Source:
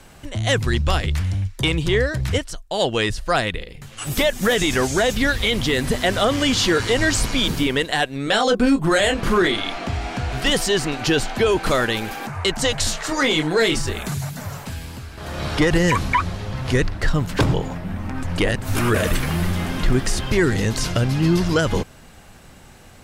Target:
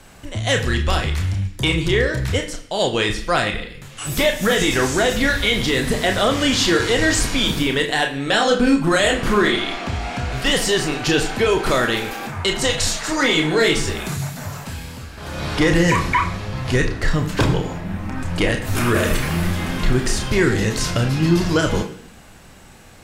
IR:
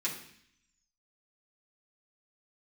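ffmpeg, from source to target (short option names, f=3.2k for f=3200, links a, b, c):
-filter_complex "[0:a]asplit=2[a][b];[1:a]atrim=start_sample=2205,lowshelf=f=180:g=-10,adelay=27[c];[b][c]afir=irnorm=-1:irlink=0,volume=-7dB[d];[a][d]amix=inputs=2:normalize=0"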